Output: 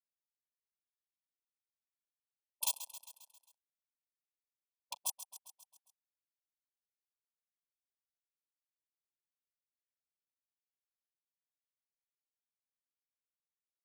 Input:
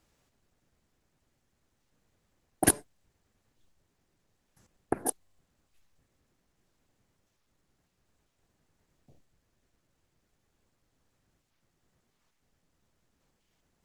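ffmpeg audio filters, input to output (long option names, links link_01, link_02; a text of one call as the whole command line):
ffmpeg -i in.wav -filter_complex "[0:a]highshelf=frequency=11000:gain=-4,aeval=exprs='sgn(val(0))*max(abs(val(0))-0.015,0)':channel_layout=same,acontrast=29,asplit=3[link_01][link_02][link_03];[link_01]afade=type=out:start_time=2.66:duration=0.02[link_04];[link_02]volume=25dB,asoftclip=hard,volume=-25dB,afade=type=in:start_time=2.66:duration=0.02,afade=type=out:start_time=4.99:duration=0.02[link_05];[link_03]afade=type=in:start_time=4.99:duration=0.02[link_06];[link_04][link_05][link_06]amix=inputs=3:normalize=0,afftfilt=real='re*lt(hypot(re,im),0.0398)':imag='im*lt(hypot(re,im),0.0398)':win_size=1024:overlap=0.75,asuperstop=centerf=1700:order=8:qfactor=0.92,aecho=1:1:134|268|402|536|670|804:0.224|0.125|0.0702|0.0393|0.022|0.0123,alimiter=level_in=3.5dB:limit=-24dB:level=0:latency=1:release=331,volume=-3.5dB,highpass=880,aecho=1:1:1.2:0.95,volume=4.5dB" out.wav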